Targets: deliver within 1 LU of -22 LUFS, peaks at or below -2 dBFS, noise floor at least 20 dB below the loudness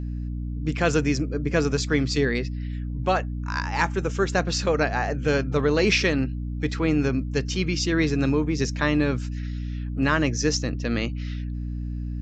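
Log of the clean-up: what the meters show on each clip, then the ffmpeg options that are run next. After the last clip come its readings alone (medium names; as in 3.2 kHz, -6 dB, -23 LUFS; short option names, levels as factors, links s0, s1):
hum 60 Hz; highest harmonic 300 Hz; hum level -27 dBFS; loudness -25.0 LUFS; peak level -7.0 dBFS; loudness target -22.0 LUFS
-> -af "bandreject=f=60:t=h:w=4,bandreject=f=120:t=h:w=4,bandreject=f=180:t=h:w=4,bandreject=f=240:t=h:w=4,bandreject=f=300:t=h:w=4"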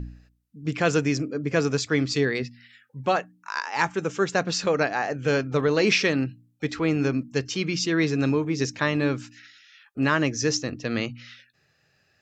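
hum not found; loudness -25.0 LUFS; peak level -7.5 dBFS; loudness target -22.0 LUFS
-> -af "volume=1.41"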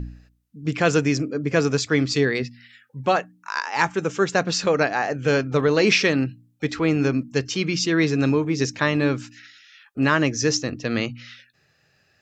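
loudness -22.0 LUFS; peak level -4.5 dBFS; noise floor -64 dBFS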